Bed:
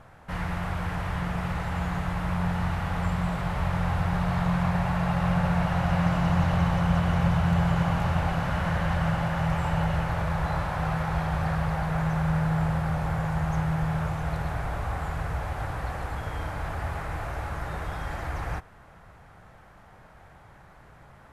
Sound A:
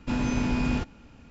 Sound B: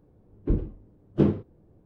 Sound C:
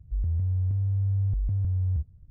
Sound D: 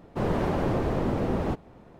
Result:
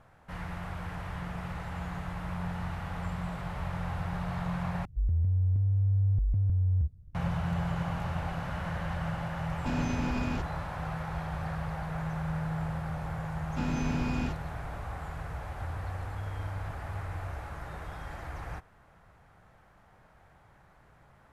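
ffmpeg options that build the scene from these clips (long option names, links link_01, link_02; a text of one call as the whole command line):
ffmpeg -i bed.wav -i cue0.wav -i cue1.wav -i cue2.wav -filter_complex "[3:a]asplit=2[link_01][link_02];[1:a]asplit=2[link_03][link_04];[0:a]volume=-8dB[link_05];[link_03]alimiter=limit=-19dB:level=0:latency=1:release=71[link_06];[link_02]highpass=85[link_07];[link_05]asplit=2[link_08][link_09];[link_08]atrim=end=4.854[link_10];[link_01]atrim=end=2.3,asetpts=PTS-STARTPTS,volume=-0.5dB[link_11];[link_09]atrim=start=7.146[link_12];[link_06]atrim=end=1.3,asetpts=PTS-STARTPTS,volume=-4.5dB,afade=type=in:duration=0.004:curve=hsin,afade=type=out:start_time=1.296:duration=0.004:curve=hsin,adelay=9580[link_13];[link_04]atrim=end=1.3,asetpts=PTS-STARTPTS,volume=-6dB,afade=type=in:duration=0.004:curve=hsin,afade=type=out:start_time=1.296:duration=0.004:curve=hsin,adelay=13490[link_14];[link_07]atrim=end=2.3,asetpts=PTS-STARTPTS,volume=-11dB,afade=type=in:duration=0.004:curve=hsin,afade=type=out:start_time=2.296:duration=0.004:curve=hsin,adelay=15370[link_15];[link_10][link_11]acrossfade=duration=0.004:curve1=hsin:curve2=hsin[link_16];[link_16][link_12]acrossfade=duration=0.004:curve1=hsin:curve2=hsin[link_17];[link_17][link_13][link_14][link_15]amix=inputs=4:normalize=0" out.wav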